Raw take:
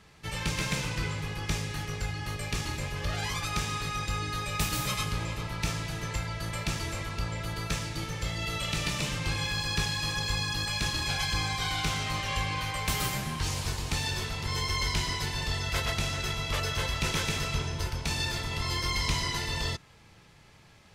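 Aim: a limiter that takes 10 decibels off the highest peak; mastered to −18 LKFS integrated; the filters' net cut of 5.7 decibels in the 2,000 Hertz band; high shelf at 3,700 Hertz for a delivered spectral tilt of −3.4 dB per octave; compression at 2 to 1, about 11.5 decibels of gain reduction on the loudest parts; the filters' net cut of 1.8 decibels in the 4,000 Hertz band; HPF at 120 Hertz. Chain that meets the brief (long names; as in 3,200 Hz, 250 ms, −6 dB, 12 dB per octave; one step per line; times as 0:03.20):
high-pass filter 120 Hz
parametric band 2,000 Hz −8 dB
high-shelf EQ 3,700 Hz +7.5 dB
parametric band 4,000 Hz −5 dB
downward compressor 2 to 1, threshold −48 dBFS
level +25 dB
brickwall limiter −8.5 dBFS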